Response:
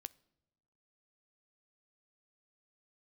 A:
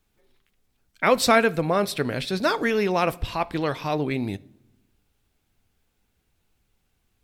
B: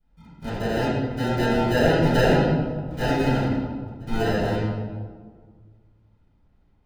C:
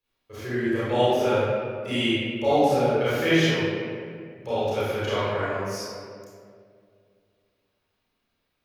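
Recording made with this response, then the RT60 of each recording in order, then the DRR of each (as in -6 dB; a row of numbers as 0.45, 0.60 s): A; not exponential, 1.7 s, 2.2 s; 16.0, -15.0, -12.5 dB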